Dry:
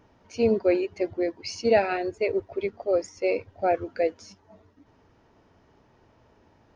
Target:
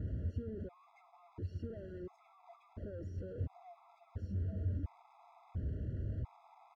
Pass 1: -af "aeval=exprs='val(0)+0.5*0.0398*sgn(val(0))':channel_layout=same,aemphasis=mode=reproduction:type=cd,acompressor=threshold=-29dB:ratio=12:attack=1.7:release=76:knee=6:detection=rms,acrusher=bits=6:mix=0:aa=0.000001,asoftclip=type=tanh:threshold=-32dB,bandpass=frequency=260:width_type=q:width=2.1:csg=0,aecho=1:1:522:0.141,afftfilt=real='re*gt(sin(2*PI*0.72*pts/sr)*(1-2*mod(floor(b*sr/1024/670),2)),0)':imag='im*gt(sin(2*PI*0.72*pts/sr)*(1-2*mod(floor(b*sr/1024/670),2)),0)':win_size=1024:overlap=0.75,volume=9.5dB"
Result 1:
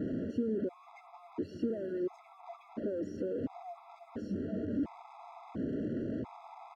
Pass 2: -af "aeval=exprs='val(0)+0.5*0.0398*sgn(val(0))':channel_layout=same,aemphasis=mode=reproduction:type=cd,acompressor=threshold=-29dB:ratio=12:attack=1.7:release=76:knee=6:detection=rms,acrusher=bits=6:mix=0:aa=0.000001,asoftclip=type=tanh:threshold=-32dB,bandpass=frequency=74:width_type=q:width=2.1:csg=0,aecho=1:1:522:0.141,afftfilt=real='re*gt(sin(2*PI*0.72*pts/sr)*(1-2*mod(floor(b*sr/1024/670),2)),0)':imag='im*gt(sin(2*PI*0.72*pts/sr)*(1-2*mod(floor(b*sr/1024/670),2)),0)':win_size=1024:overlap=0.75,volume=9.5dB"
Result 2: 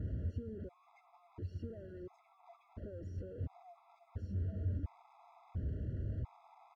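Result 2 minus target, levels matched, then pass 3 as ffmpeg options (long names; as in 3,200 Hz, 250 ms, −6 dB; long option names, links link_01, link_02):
downward compressor: peak gain reduction +7.5 dB
-af "aeval=exprs='val(0)+0.5*0.0398*sgn(val(0))':channel_layout=same,aemphasis=mode=reproduction:type=cd,acompressor=threshold=-21dB:ratio=12:attack=1.7:release=76:knee=6:detection=rms,acrusher=bits=6:mix=0:aa=0.000001,asoftclip=type=tanh:threshold=-32dB,bandpass=frequency=74:width_type=q:width=2.1:csg=0,aecho=1:1:522:0.141,afftfilt=real='re*gt(sin(2*PI*0.72*pts/sr)*(1-2*mod(floor(b*sr/1024/670),2)),0)':imag='im*gt(sin(2*PI*0.72*pts/sr)*(1-2*mod(floor(b*sr/1024/670),2)),0)':win_size=1024:overlap=0.75,volume=9.5dB"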